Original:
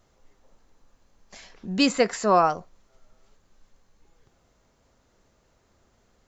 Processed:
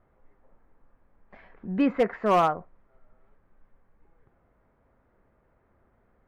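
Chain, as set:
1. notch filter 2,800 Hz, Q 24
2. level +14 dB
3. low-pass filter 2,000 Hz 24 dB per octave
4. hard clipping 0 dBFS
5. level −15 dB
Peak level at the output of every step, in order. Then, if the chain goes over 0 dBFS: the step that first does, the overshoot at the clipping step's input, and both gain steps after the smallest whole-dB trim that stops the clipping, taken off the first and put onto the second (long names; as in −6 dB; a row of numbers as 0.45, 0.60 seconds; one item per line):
−7.0, +7.0, +6.5, 0.0, −15.0 dBFS
step 2, 6.5 dB
step 2 +7 dB, step 5 −8 dB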